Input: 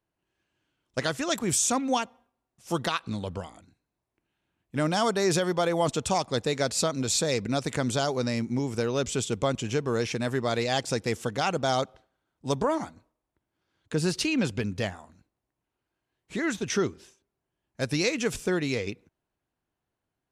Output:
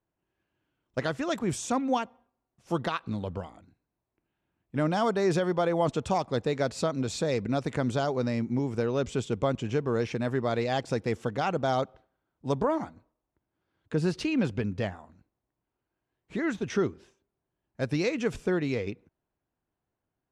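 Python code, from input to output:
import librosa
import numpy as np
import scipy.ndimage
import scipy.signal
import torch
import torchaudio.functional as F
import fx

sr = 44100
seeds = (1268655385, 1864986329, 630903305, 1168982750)

y = fx.lowpass(x, sr, hz=1600.0, slope=6)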